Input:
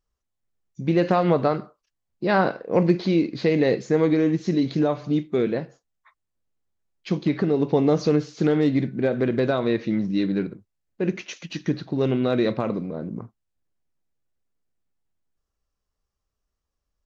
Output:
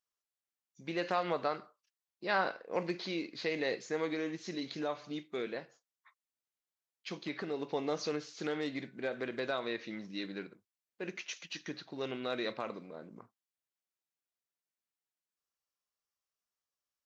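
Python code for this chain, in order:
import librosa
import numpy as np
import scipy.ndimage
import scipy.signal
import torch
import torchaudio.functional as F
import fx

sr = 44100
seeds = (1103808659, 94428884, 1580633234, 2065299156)

y = fx.highpass(x, sr, hz=1400.0, slope=6)
y = F.gain(torch.from_numpy(y), -4.5).numpy()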